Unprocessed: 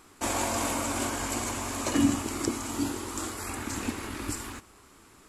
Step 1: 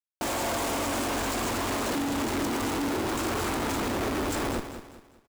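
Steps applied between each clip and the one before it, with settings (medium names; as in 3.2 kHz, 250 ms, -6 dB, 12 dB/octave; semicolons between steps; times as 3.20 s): Schmitt trigger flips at -38.5 dBFS; peaking EQ 480 Hz +4.5 dB 2.3 oct; on a send: feedback delay 199 ms, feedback 36%, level -10 dB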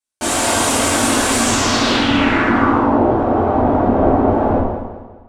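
square wave that keeps the level; low-pass sweep 9.2 kHz -> 740 Hz, 1.37–2.97 s; two-slope reverb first 0.65 s, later 2.1 s, from -24 dB, DRR -8.5 dB; trim +1 dB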